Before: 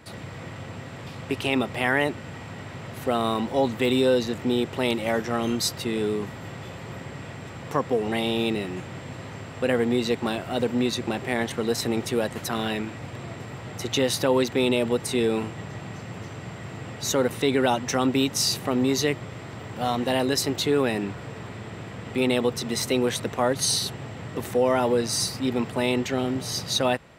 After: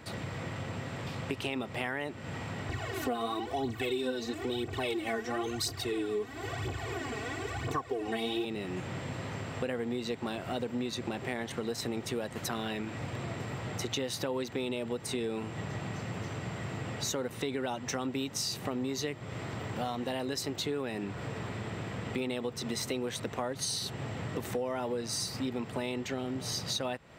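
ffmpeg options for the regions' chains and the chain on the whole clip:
-filter_complex "[0:a]asettb=1/sr,asplit=3[a][b][c];[a]atrim=end=2.694[d];[b]atrim=start=2.69:end=8.45,asetpts=PTS-STARTPTS,afade=t=in:d=0.004:c=qsin,afade=t=out:st=5.756:d=0.004:c=qsin,aecho=1:1:2.7:0.82,atrim=end_sample=254016,aphaser=in_gain=1:out_gain=1:delay=4.9:decay=0.65:speed=1:type=triangular[e];[c]atrim=start=8.446[f];[d][e]acrossfade=d=0.004:c1=hsin:c2=qsin[g];[g][f]acrossfade=d=0.004:c1=qsin:c2=hsin,equalizer=f=11k:w=6.5:g=-12.5,acompressor=threshold=-32dB:ratio=5"

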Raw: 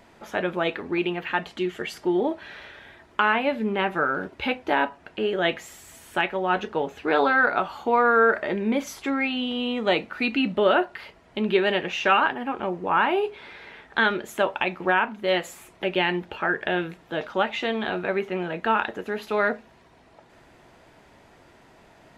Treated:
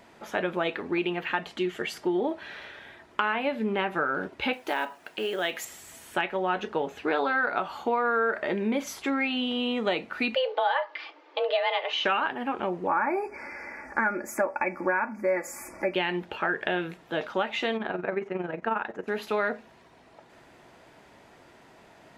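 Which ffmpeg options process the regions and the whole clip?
-filter_complex "[0:a]asettb=1/sr,asplit=3[a][b][c];[a]atrim=end=4.534[d];[b]atrim=start=4.53:end=5.65,asetpts=PTS-STARTPTS,afade=t=in:d=0.004:c=qsin,afade=t=out:st=1.116:d=0.004:c=qsin,aemphasis=mode=production:type=bsi,acompressor=threshold=-29dB:ratio=1.5:attack=3.2:release=140:knee=1:detection=peak,acrusher=bits=7:mode=log:mix=0:aa=0.000001[e];[c]atrim=start=5.646[f];[d][e]acrossfade=d=0.004:c1=hsin:c2=qsin[g];[g][f]acrossfade=d=0.004:c1=qsin:c2=hsin,asettb=1/sr,asplit=3[h][i][j];[h]atrim=end=10.354[k];[i]atrim=start=10.35:end=12.05,asetpts=PTS-STARTPTS,afade=t=in:d=0.004:c=qsin,afade=t=out:st=1.696:d=0.004:c=qsin,lowpass=f=5k:w=0.5412,lowpass=f=5k:w=1.3066,aecho=1:1:3.3:0.31,atrim=end_sample=74970,afreqshift=250[l];[j]atrim=start=12.046[m];[k][l]acrossfade=d=0.004:c1=hsin:c2=qsin[n];[n][m]acrossfade=d=0.004:c1=qsin:c2=hsin,asettb=1/sr,asplit=3[o][p][q];[o]atrim=end=12.874[r];[p]atrim=start=12.87:end=15.94,asetpts=PTS-STARTPTS,afade=t=in:d=0.004:c=qsin,afade=t=out:st=3.066:d=0.004:c=qsin,asuperstop=centerf=3400:order=20:qfactor=1.6,aecho=1:1:3.5:0.66,atrim=end_sample=135387,acompressor=mode=upward:threshold=-33dB:ratio=2.5:attack=3.2:release=140:knee=2.83:detection=peak[s];[q]atrim=start=15.936[t];[r][s]acrossfade=d=0.004:c1=hsin:c2=qsin[u];[u][t]acrossfade=d=0.004:c1=qsin:c2=hsin,asettb=1/sr,asplit=3[v][w][x];[v]atrim=end=17.774[y];[w]atrim=start=17.77:end=19.08,asetpts=PTS-STARTPTS,afade=t=in:d=0.004:c=qsin,afade=t=out:st=1.306:d=0.004:c=qsin,equalizer=f=3.6k:w=1.4:g=-12,tremolo=f=22:d=0.621,lowpass=6.2k[z];[x]atrim=start=19.076[aa];[y][z]acrossfade=d=0.004:c1=hsin:c2=qsin[ab];[ab][aa]acrossfade=d=0.004:c1=qsin:c2=hsin,lowshelf=f=79:g=-10.5,acompressor=threshold=-23dB:ratio=4"

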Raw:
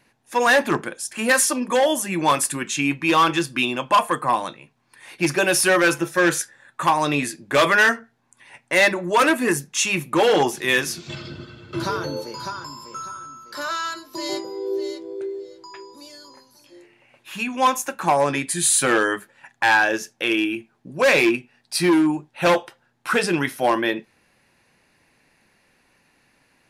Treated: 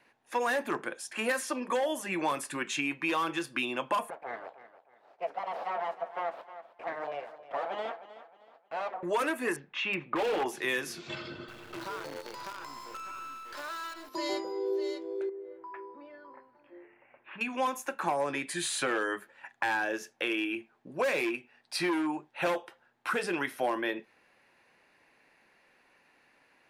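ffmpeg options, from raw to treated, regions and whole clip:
-filter_complex "[0:a]asettb=1/sr,asplit=3[a][b][c];[a]atrim=end=4.104[d];[b]atrim=start=4.1:end=9.03,asetpts=PTS-STARTPTS,afade=t=in:d=0.004:c=qsin,afade=t=out:st=4.926:d=0.004:c=qsin,aeval=exprs='abs(val(0))':c=same,bandpass=f=680:t=q:w=2.7,aecho=1:1:312|624|936:0.168|0.0571|0.0194,atrim=end_sample=217413[e];[c]atrim=start=9.026[f];[d][e]acrossfade=d=0.004:c1=hsin:c2=qsin[g];[g][f]acrossfade=d=0.004:c1=qsin:c2=hsin,asettb=1/sr,asplit=3[h][i][j];[h]atrim=end=9.564[k];[i]atrim=start=9.56:end=10.46,asetpts=PTS-STARTPTS,afade=t=in:d=0.004:c=qsin,afade=t=out:st=0.896:d=0.004:c=qsin,lowpass=f=3.2k:w=0.5412,lowpass=f=3.2k:w=1.3066,aeval=exprs='0.211*(abs(mod(val(0)/0.211+3,4)-2)-1)':c=same[l];[j]atrim=start=10.456[m];[k][l]acrossfade=d=0.004:c1=hsin:c2=qsin[n];[n][m]acrossfade=d=0.004:c1=qsin:c2=hsin,asettb=1/sr,asplit=3[o][p][q];[o]atrim=end=11.484[r];[p]atrim=start=11.48:end=14.09,asetpts=PTS-STARTPTS,afade=t=in:d=0.004:c=qsin,afade=t=out:st=2.606:d=0.004:c=qsin,aeval=exprs='val(0)+0.5*0.015*sgn(val(0))':c=same,acrusher=bits=5:dc=4:mix=0:aa=0.000001,acompressor=threshold=-32dB:ratio=6:attack=3.2:release=140:knee=1:detection=peak[s];[q]atrim=start=14.086[t];[r][s]acrossfade=d=0.004:c1=hsin:c2=qsin[u];[u][t]acrossfade=d=0.004:c1=qsin:c2=hsin,asettb=1/sr,asplit=3[v][w][x];[v]atrim=end=15.294[y];[w]atrim=start=15.29:end=17.41,asetpts=PTS-STARTPTS,afade=t=in:d=0.004:c=qsin,afade=t=out:st=2.116:d=0.004:c=qsin,lowpass=f=2.1k:w=0.5412,lowpass=f=2.1k:w=1.3066,acompressor=threshold=-36dB:ratio=4:attack=3.2:release=140:knee=1:detection=peak[z];[x]atrim=start=17.406[aa];[y][z]acrossfade=d=0.004:c1=hsin:c2=qsin[ab];[ab][aa]acrossfade=d=0.004:c1=qsin:c2=hsin,bass=f=250:g=-13,treble=f=4k:g=-10,acrossover=split=380|7100[ac][ad][ae];[ac]acompressor=threshold=-35dB:ratio=4[af];[ad]acompressor=threshold=-29dB:ratio=4[ag];[ae]acompressor=threshold=-41dB:ratio=4[ah];[af][ag][ah]amix=inputs=3:normalize=0,volume=-1.5dB"

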